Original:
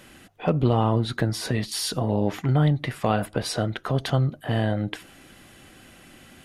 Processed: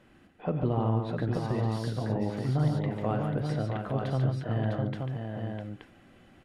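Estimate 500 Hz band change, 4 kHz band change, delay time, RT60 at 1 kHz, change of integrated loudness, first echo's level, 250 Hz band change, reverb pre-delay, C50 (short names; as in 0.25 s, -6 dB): -5.5 dB, -15.0 dB, 45 ms, none, -6.0 dB, -16.0 dB, -5.0 dB, none, none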